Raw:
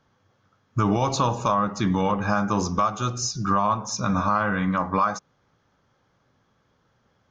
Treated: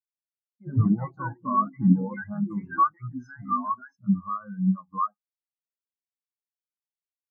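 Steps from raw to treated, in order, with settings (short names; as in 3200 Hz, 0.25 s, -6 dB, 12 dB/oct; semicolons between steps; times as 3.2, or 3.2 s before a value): echoes that change speed 86 ms, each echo +5 st, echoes 2; 3.5–4.05 de-hum 66.21 Hz, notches 27; spectral expander 4:1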